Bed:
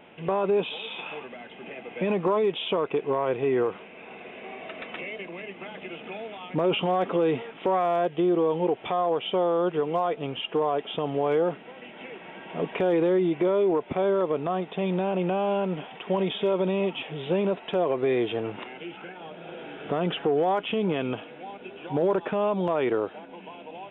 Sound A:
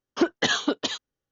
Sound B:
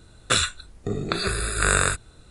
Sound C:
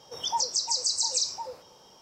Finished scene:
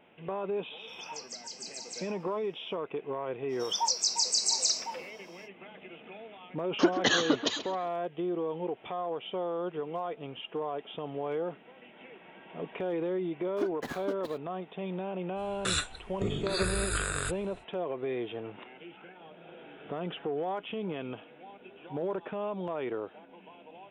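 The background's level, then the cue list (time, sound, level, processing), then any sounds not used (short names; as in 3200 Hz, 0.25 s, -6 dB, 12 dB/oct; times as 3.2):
bed -9.5 dB
0.76 add C -16 dB, fades 0.05 s
3.48 add C -0.5 dB, fades 0.05 s + HPF 490 Hz 6 dB/oct
6.62 add A -2.5 dB + darkening echo 0.133 s, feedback 41%, low-pass 3700 Hz, level -11 dB
13.4 add A -12.5 dB + median filter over 15 samples
15.35 add B -5 dB, fades 0.05 s + limiter -13 dBFS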